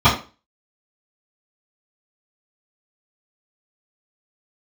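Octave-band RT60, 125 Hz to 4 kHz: 0.30, 0.35, 0.35, 0.35, 0.30, 0.30 s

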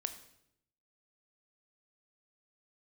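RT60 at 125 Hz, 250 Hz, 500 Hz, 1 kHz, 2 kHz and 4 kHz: 1.0, 0.95, 0.85, 0.70, 0.70, 0.65 s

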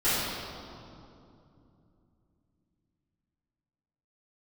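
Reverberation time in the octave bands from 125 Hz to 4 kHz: 4.3, 4.0, 2.9, 2.5, 1.8, 1.7 s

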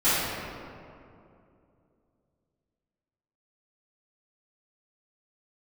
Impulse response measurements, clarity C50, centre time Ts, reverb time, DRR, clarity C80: -4.0 dB, 0.153 s, 2.6 s, -16.5 dB, -1.0 dB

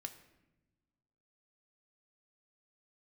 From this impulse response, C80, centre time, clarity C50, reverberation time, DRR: 14.0 dB, 9 ms, 12.5 dB, not exponential, 6.5 dB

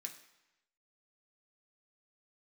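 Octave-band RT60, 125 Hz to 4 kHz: 0.95, 0.90, 0.90, 1.0, 1.0, 0.95 s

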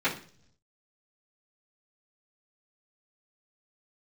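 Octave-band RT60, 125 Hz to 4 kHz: 1.1, 0.80, 0.60, 0.40, 0.45, 0.55 s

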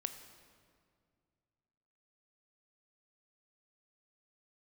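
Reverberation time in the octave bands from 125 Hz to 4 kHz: 2.9, 2.5, 2.3, 2.0, 1.7, 1.4 s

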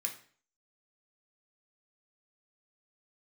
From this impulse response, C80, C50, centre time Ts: 14.5 dB, 10.5 dB, 14 ms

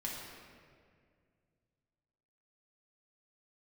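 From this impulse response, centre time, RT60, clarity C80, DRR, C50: 0.101 s, 2.1 s, 2.0 dB, -4.5 dB, 0.0 dB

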